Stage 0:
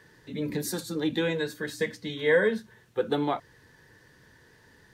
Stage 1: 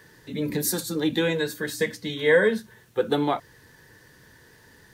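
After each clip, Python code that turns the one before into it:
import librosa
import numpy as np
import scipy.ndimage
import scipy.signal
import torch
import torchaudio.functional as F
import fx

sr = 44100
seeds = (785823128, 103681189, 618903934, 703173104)

y = fx.high_shelf(x, sr, hz=9000.0, db=10.5)
y = F.gain(torch.from_numpy(y), 3.5).numpy()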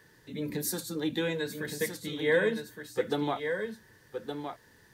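y = x + 10.0 ** (-7.0 / 20.0) * np.pad(x, (int(1166 * sr / 1000.0), 0))[:len(x)]
y = F.gain(torch.from_numpy(y), -7.0).numpy()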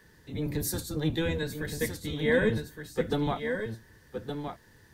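y = fx.octave_divider(x, sr, octaves=1, level_db=3.0)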